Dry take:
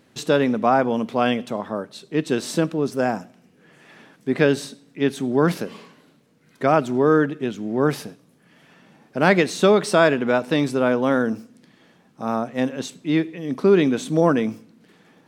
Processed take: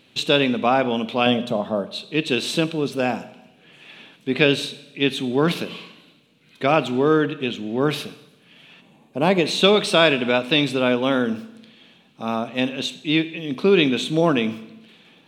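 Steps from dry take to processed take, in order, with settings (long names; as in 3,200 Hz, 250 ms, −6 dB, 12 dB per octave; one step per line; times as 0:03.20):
0:01.26–0:01.87: graphic EQ with 15 bands 160 Hz +11 dB, 630 Hz +7 dB, 2,500 Hz −12 dB
0:08.81–0:09.46: gain on a spectral selection 1,200–6,200 Hz −10 dB
flat-topped bell 3,100 Hz +12.5 dB 1 octave
four-comb reverb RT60 1 s, combs from 28 ms, DRR 15 dB
level −1 dB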